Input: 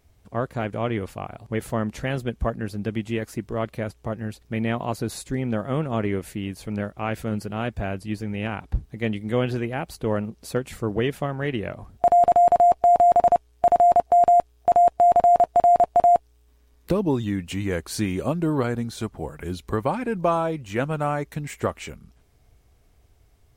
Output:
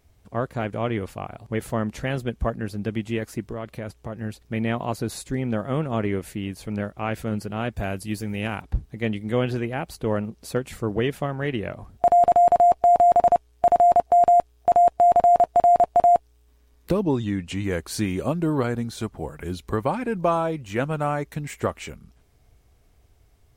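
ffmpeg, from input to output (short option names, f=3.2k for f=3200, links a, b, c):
-filter_complex "[0:a]asettb=1/sr,asplit=3[a][b][c];[a]atrim=end=3.524[d];[b]atrim=start=3.52:end=4.17,asetpts=PTS-STARTPTS,afade=t=in:d=0.004:c=qsin,afade=t=out:st=0.646:d=0.004:c=qsin,acompressor=threshold=-28dB:ratio=4:attack=3.2:release=140:knee=1:detection=peak[e];[c]atrim=start=4.166[f];[d][e]acrossfade=d=0.004:c1=hsin:c2=qsin[g];[g][f]acrossfade=d=0.004:c1=qsin:c2=hsin,asettb=1/sr,asplit=3[h][i][j];[h]atrim=end=7.774[k];[i]atrim=start=7.77:end=8.62,asetpts=PTS-STARTPTS,afade=t=in:d=0.004:c=qsin,afade=t=out:st=0.846:d=0.004:c=qsin,aemphasis=mode=production:type=50kf[l];[j]atrim=start=8.616[m];[k][l]acrossfade=d=0.004:c1=hsin:c2=qsin[n];[n][m]acrossfade=d=0.004:c1=qsin:c2=hsin,asettb=1/sr,asplit=3[o][p][q];[o]atrim=end=17.034[r];[p]atrim=start=17.03:end=17.64,asetpts=PTS-STARTPTS,afade=t=in:d=0.004:c=qsin,afade=t=out:st=0.606:d=0.004:c=qsin,lowpass=8.9k[s];[q]atrim=start=17.636[t];[r][s]acrossfade=d=0.004:c1=hsin:c2=qsin[u];[u][t]acrossfade=d=0.004:c1=qsin:c2=hsin"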